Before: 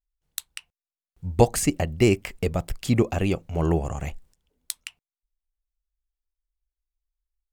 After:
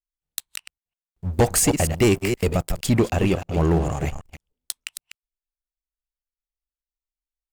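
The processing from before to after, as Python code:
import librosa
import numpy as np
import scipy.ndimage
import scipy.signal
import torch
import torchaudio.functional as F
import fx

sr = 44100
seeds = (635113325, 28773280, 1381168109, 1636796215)

y = fx.reverse_delay(x, sr, ms=156, wet_db=-9.5)
y = fx.high_shelf(y, sr, hz=6000.0, db=6.5, at=(1.33, 2.87))
y = fx.leveller(y, sr, passes=3)
y = y * librosa.db_to_amplitude(-7.0)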